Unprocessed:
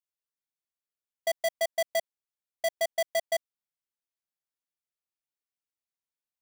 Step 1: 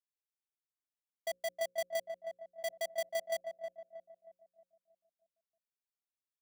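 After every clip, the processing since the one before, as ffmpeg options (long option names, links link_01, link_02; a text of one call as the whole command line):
ffmpeg -i in.wav -filter_complex "[0:a]bandreject=frequency=60:width_type=h:width=6,bandreject=frequency=120:width_type=h:width=6,bandreject=frequency=180:width_type=h:width=6,bandreject=frequency=240:width_type=h:width=6,bandreject=frequency=300:width_type=h:width=6,bandreject=frequency=360:width_type=h:width=6,bandreject=frequency=420:width_type=h:width=6,bandreject=frequency=480:width_type=h:width=6,bandreject=frequency=540:width_type=h:width=6,asplit=2[link_01][link_02];[link_02]adelay=316,lowpass=frequency=900:poles=1,volume=-4dB,asplit=2[link_03][link_04];[link_04]adelay=316,lowpass=frequency=900:poles=1,volume=0.53,asplit=2[link_05][link_06];[link_06]adelay=316,lowpass=frequency=900:poles=1,volume=0.53,asplit=2[link_07][link_08];[link_08]adelay=316,lowpass=frequency=900:poles=1,volume=0.53,asplit=2[link_09][link_10];[link_10]adelay=316,lowpass=frequency=900:poles=1,volume=0.53,asplit=2[link_11][link_12];[link_12]adelay=316,lowpass=frequency=900:poles=1,volume=0.53,asplit=2[link_13][link_14];[link_14]adelay=316,lowpass=frequency=900:poles=1,volume=0.53[link_15];[link_01][link_03][link_05][link_07][link_09][link_11][link_13][link_15]amix=inputs=8:normalize=0,volume=-9dB" out.wav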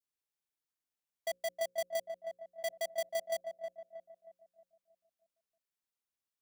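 ffmpeg -i in.wav -af "adynamicequalizer=threshold=0.00251:dfrequency=1900:dqfactor=0.79:tfrequency=1900:tqfactor=0.79:attack=5:release=100:ratio=0.375:range=2:mode=cutabove:tftype=bell,volume=1dB" out.wav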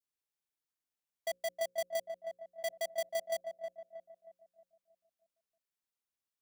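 ffmpeg -i in.wav -af anull out.wav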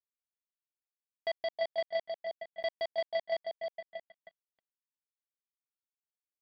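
ffmpeg -i in.wav -filter_complex "[0:a]asplit=2[link_01][link_02];[link_02]acompressor=mode=upward:threshold=-38dB:ratio=2.5,volume=0dB[link_03];[link_01][link_03]amix=inputs=2:normalize=0,acrusher=bits=5:mix=0:aa=0.5,aresample=11025,aresample=44100,volume=-3dB" out.wav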